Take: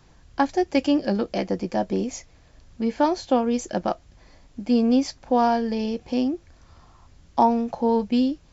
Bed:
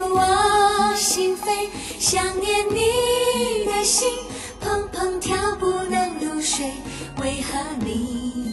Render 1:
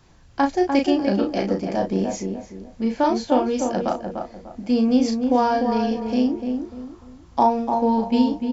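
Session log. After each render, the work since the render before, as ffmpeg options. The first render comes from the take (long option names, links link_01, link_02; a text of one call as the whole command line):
ffmpeg -i in.wav -filter_complex "[0:a]asplit=2[link_01][link_02];[link_02]adelay=36,volume=-5dB[link_03];[link_01][link_03]amix=inputs=2:normalize=0,asplit=2[link_04][link_05];[link_05]adelay=297,lowpass=frequency=1500:poles=1,volume=-5dB,asplit=2[link_06][link_07];[link_07]adelay=297,lowpass=frequency=1500:poles=1,volume=0.32,asplit=2[link_08][link_09];[link_09]adelay=297,lowpass=frequency=1500:poles=1,volume=0.32,asplit=2[link_10][link_11];[link_11]adelay=297,lowpass=frequency=1500:poles=1,volume=0.32[link_12];[link_04][link_06][link_08][link_10][link_12]amix=inputs=5:normalize=0" out.wav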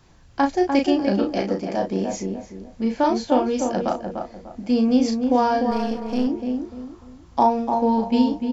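ffmpeg -i in.wav -filter_complex "[0:a]asettb=1/sr,asplit=3[link_01][link_02][link_03];[link_01]atrim=end=1.424[link_04];[link_02]atrim=start=1.42:end=2.1,asetpts=PTS-STARTPTS,afade=type=in:duration=0.004:curve=qsin,afade=type=out:start_time=0.676:duration=0.004:curve=qsin,lowshelf=frequency=140:gain=-7.5[link_05];[link_03]atrim=start=2.096[link_06];[link_04][link_05]acrossfade=duration=0.004:curve1=hsin:curve2=qsin[link_07];[link_07][link_06]acrossfade=duration=0.004:curve1=qsin:curve2=hsin,asettb=1/sr,asplit=3[link_08][link_09][link_10];[link_08]atrim=end=5.714[link_11];[link_09]atrim=start=5.71:end=6.27,asetpts=PTS-STARTPTS,afade=type=in:duration=0.004:curve=qsin,afade=type=out:start_time=0.556:duration=0.004:curve=qsin,aeval=exprs='if(lt(val(0),0),0.447*val(0),val(0))':channel_layout=same[link_12];[link_10]atrim=start=6.266[link_13];[link_11][link_12]acrossfade=duration=0.004:curve1=hsin:curve2=qsin[link_14];[link_14][link_13]acrossfade=duration=0.004:curve1=qsin:curve2=hsin" out.wav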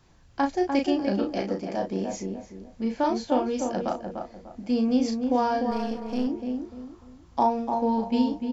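ffmpeg -i in.wav -af "volume=-5dB" out.wav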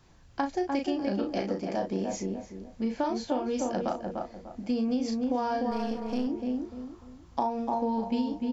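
ffmpeg -i in.wav -af "acompressor=threshold=-25dB:ratio=6" out.wav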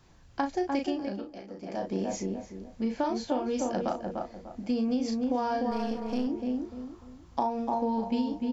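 ffmpeg -i in.wav -filter_complex "[0:a]asplit=3[link_01][link_02][link_03];[link_01]atrim=end=1.32,asetpts=PTS-STARTPTS,afade=type=out:start_time=0.84:duration=0.48:silence=0.211349[link_04];[link_02]atrim=start=1.32:end=1.5,asetpts=PTS-STARTPTS,volume=-13.5dB[link_05];[link_03]atrim=start=1.5,asetpts=PTS-STARTPTS,afade=type=in:duration=0.48:silence=0.211349[link_06];[link_04][link_05][link_06]concat=n=3:v=0:a=1" out.wav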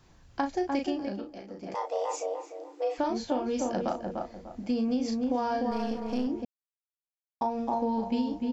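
ffmpeg -i in.wav -filter_complex "[0:a]asettb=1/sr,asplit=3[link_01][link_02][link_03];[link_01]atrim=end=1.744[link_04];[link_02]atrim=start=1.74:end=2.98,asetpts=PTS-STARTPTS,afade=type=in:duration=0.004:curve=qsin,afade=type=out:start_time=1.236:duration=0.004:curve=qsin,afreqshift=270[link_05];[link_03]atrim=start=2.976[link_06];[link_04][link_05]acrossfade=duration=0.004:curve1=hsin:curve2=qsin[link_07];[link_07][link_06]acrossfade=duration=0.004:curve1=qsin:curve2=hsin,asplit=3[link_08][link_09][link_10];[link_08]atrim=end=6.45,asetpts=PTS-STARTPTS,afade=type=out:start_time=6.446:duration=0.004:curve=hsin[link_11];[link_09]atrim=start=6.45:end=7.41,asetpts=PTS-STARTPTS,volume=0[link_12];[link_10]atrim=start=7.41,asetpts=PTS-STARTPTS,afade=type=in:duration=0.004:curve=hsin[link_13];[link_11][link_12][link_13]concat=n=3:v=0:a=1" out.wav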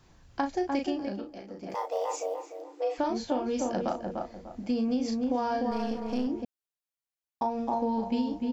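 ffmpeg -i in.wav -filter_complex "[0:a]asettb=1/sr,asplit=3[link_01][link_02][link_03];[link_01]atrim=end=1.694[link_04];[link_02]atrim=start=1.69:end=2.62,asetpts=PTS-STARTPTS,afade=type=in:duration=0.004:curve=qsin,afade=type=out:start_time=0.926:duration=0.004:curve=qsin,acrusher=bits=9:mode=log:mix=0:aa=0.000001[link_05];[link_03]atrim=start=2.616[link_06];[link_04][link_05]acrossfade=duration=0.004:curve1=hsin:curve2=qsin[link_07];[link_07][link_06]acrossfade=duration=0.004:curve1=qsin:curve2=hsin" out.wav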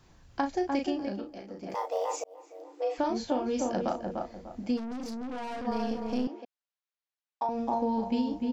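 ffmpeg -i in.wav -filter_complex "[0:a]asplit=3[link_01][link_02][link_03];[link_01]afade=type=out:start_time=4.76:duration=0.02[link_04];[link_02]aeval=exprs='(tanh(56.2*val(0)+0.4)-tanh(0.4))/56.2':channel_layout=same,afade=type=in:start_time=4.76:duration=0.02,afade=type=out:start_time=5.66:duration=0.02[link_05];[link_03]afade=type=in:start_time=5.66:duration=0.02[link_06];[link_04][link_05][link_06]amix=inputs=3:normalize=0,asettb=1/sr,asplit=3[link_07][link_08][link_09];[link_07]atrim=end=6.274[link_10];[link_08]atrim=start=6.27:end=7.49,asetpts=PTS-STARTPTS,afade=type=in:duration=0.004:curve=qsin,afade=type=out:start_time=1.216:duration=0.004:curve=qsin,highpass=560,lowpass=4800[link_11];[link_09]atrim=start=7.486[link_12];[link_10][link_11]acrossfade=duration=0.004:curve1=hsin:curve2=qsin[link_13];[link_13][link_12]acrossfade=duration=0.004:curve1=qsin:curve2=hsin,asplit=2[link_14][link_15];[link_14]atrim=end=2.24,asetpts=PTS-STARTPTS,afade=type=out:start_time=2.236:duration=0.004:curve=hsin[link_16];[link_15]atrim=start=2.24,asetpts=PTS-STARTPTS,afade=type=in:duration=0.83:curve=qsin[link_17];[link_16][link_17]concat=n=2:v=0:a=1" out.wav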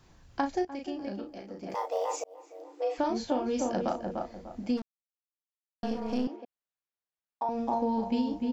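ffmpeg -i in.wav -filter_complex "[0:a]asettb=1/sr,asplit=3[link_01][link_02][link_03];[link_01]atrim=end=6.364[link_04];[link_02]atrim=start=6.36:end=7.47,asetpts=PTS-STARTPTS,afade=type=in:duration=0.004:curve=qsin,afade=type=out:start_time=1.106:duration=0.004:curve=qsin,highshelf=frequency=2300:gain=-8.5[link_05];[link_03]atrim=start=7.466[link_06];[link_04][link_05]acrossfade=duration=0.004:curve1=hsin:curve2=qsin[link_07];[link_07][link_06]acrossfade=duration=0.004:curve1=qsin:curve2=hsin,asplit=4[link_08][link_09][link_10][link_11];[link_08]atrim=end=0.65,asetpts=PTS-STARTPTS,afade=type=out:start_time=0.646:duration=0.004:curve=hsin:silence=0.188365[link_12];[link_09]atrim=start=0.65:end=4.82,asetpts=PTS-STARTPTS,afade=type=in:duration=0.64:silence=0.188365,afade=type=out:start_time=4.166:duration=0.004:curve=hsin[link_13];[link_10]atrim=start=4.82:end=5.83,asetpts=PTS-STARTPTS,volume=0[link_14];[link_11]atrim=start=5.83,asetpts=PTS-STARTPTS,afade=type=in:duration=0.004:curve=hsin[link_15];[link_12][link_13][link_14][link_15]concat=n=4:v=0:a=1" out.wav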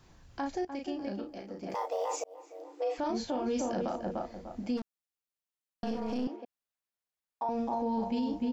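ffmpeg -i in.wav -af "alimiter=level_in=0.5dB:limit=-24dB:level=0:latency=1:release=26,volume=-0.5dB" out.wav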